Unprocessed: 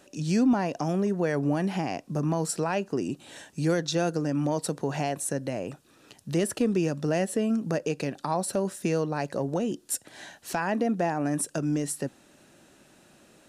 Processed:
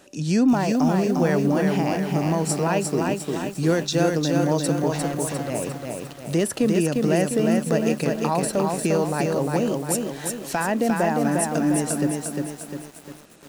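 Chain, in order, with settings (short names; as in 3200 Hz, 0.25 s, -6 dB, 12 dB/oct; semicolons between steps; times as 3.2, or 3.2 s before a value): 4.91–5.5 hard clip -31 dBFS, distortion -21 dB; lo-fi delay 0.352 s, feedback 55%, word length 8-bit, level -3 dB; gain +4 dB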